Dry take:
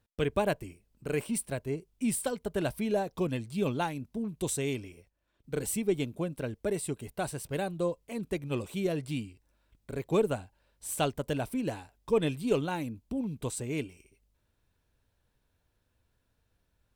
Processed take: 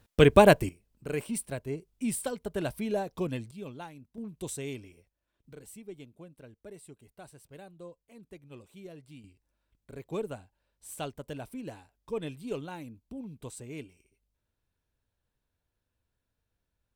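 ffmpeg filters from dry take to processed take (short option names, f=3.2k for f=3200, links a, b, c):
-af "asetnsamples=n=441:p=0,asendcmd='0.69 volume volume -1.5dB;3.51 volume volume -12dB;4.18 volume volume -5.5dB;5.53 volume volume -16dB;9.24 volume volume -8dB',volume=11dB"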